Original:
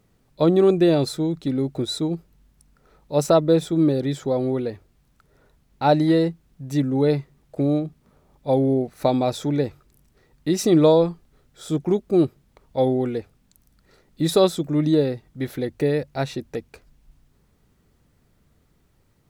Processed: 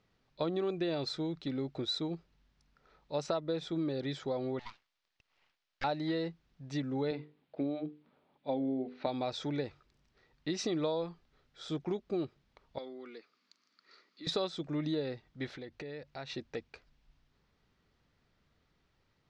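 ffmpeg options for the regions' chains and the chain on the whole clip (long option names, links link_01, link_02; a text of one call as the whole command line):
ffmpeg -i in.wav -filter_complex "[0:a]asettb=1/sr,asplit=3[link_01][link_02][link_03];[link_01]atrim=end=4.594[link_04];[link_02]atrim=start=4.59:end=5.84,asetpts=PTS-STARTPTS,afade=type=in:duration=0.004:curve=qsin,afade=type=out:start_time=1.246:duration=0.004:curve=qsin,highpass=frequency=580:width=0.5412,highpass=frequency=580:width=1.3066,aeval=exprs='abs(val(0))':channel_layout=same[link_05];[link_03]atrim=start=5.836[link_06];[link_04][link_05]acrossfade=duration=0.004:curve1=hsin:curve2=qsin[link_07];[link_07][link_06]acrossfade=duration=0.004:curve1=qsin:curve2=hsin,asettb=1/sr,asplit=3[link_08][link_09][link_10];[link_08]atrim=end=7.114[link_11];[link_09]atrim=start=7.11:end=9.07,asetpts=PTS-STARTPTS,afade=type=in:duration=0.004:curve=qsin,afade=type=out:start_time=1.956:duration=0.004:curve=qsin,highpass=160,equalizer=frequency=260:width_type=q:width=4:gain=7,equalizer=frequency=1200:width_type=q:width=4:gain=-5,equalizer=frequency=1800:width_type=q:width=4:gain=-3,lowpass=frequency=3900:width=0.5412,lowpass=frequency=3900:width=1.3066,bandreject=frequency=50:width_type=h:width=6,bandreject=frequency=100:width_type=h:width=6,bandreject=frequency=150:width_type=h:width=6,bandreject=frequency=200:width_type=h:width=6,bandreject=frequency=250:width_type=h:width=6,bandreject=frequency=300:width_type=h:width=6,bandreject=frequency=350:width_type=h:width=6,bandreject=frequency=400:width_type=h:width=6,bandreject=frequency=450:width_type=h:width=6,bandreject=frequency=500:width_type=h:width=6[link_12];[link_10]atrim=start=9.066[link_13];[link_11][link_12]acrossfade=duration=0.004:curve1=hsin:curve2=qsin[link_14];[link_14][link_13]acrossfade=duration=0.004:curve1=qsin:curve2=hsin,asettb=1/sr,asplit=3[link_15][link_16][link_17];[link_15]atrim=end=12.784[link_18];[link_16]atrim=start=12.78:end=14.27,asetpts=PTS-STARTPTS,afade=type=in:duration=0.004:curve=qsin,afade=type=out:start_time=1.486:duration=0.004:curve=qsin,acompressor=threshold=-52dB:ratio=1.5:attack=3.2:release=140:knee=1:detection=peak,highpass=frequency=240:width=0.5412,highpass=frequency=240:width=1.3066,equalizer=frequency=550:width_type=q:width=4:gain=-4,equalizer=frequency=790:width_type=q:width=4:gain=-8,equalizer=frequency=1200:width_type=q:width=4:gain=9,equalizer=frequency=2200:width_type=q:width=4:gain=5,equalizer=frequency=4600:width_type=q:width=4:gain=10,equalizer=frequency=6900:width_type=q:width=4:gain=4,lowpass=frequency=7600:width=0.5412,lowpass=frequency=7600:width=1.3066[link_19];[link_17]atrim=start=14.266[link_20];[link_18][link_19]acrossfade=duration=0.004:curve1=hsin:curve2=qsin[link_21];[link_21][link_20]acrossfade=duration=0.004:curve1=qsin:curve2=hsin,asettb=1/sr,asplit=3[link_22][link_23][link_24];[link_22]atrim=end=15.564[link_25];[link_23]atrim=start=15.56:end=16.3,asetpts=PTS-STARTPTS,afade=type=in:duration=0.004:curve=qsin,afade=type=out:start_time=0.736:duration=0.004:curve=qsin,lowpass=9000,acompressor=threshold=-32dB:ratio=4:attack=3.2:release=140:knee=1:detection=peak[link_26];[link_24]atrim=start=16.296[link_27];[link_25][link_26]acrossfade=duration=0.004:curve1=hsin:curve2=qsin[link_28];[link_28][link_27]acrossfade=duration=0.004:curve1=qsin:curve2=hsin,lowpass=frequency=5200:width=0.5412,lowpass=frequency=5200:width=1.3066,tiltshelf=frequency=660:gain=-5,acompressor=threshold=-22dB:ratio=5,volume=-8.5dB" out.wav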